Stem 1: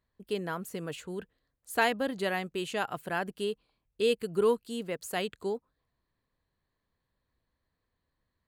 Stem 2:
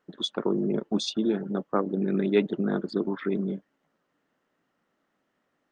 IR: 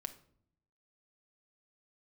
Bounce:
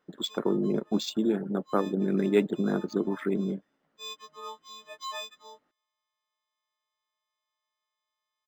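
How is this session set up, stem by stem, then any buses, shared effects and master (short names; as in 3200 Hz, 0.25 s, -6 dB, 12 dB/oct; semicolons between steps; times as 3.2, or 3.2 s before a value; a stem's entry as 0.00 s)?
-8.0 dB, 0.00 s, no send, frequency quantiser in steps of 6 st; HPF 810 Hz 12 dB/oct; comb 1.4 ms, depth 52%; auto duck -14 dB, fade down 0.65 s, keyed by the second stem
-0.5 dB, 0.00 s, no send, dry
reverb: off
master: decimation joined by straight lines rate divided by 4×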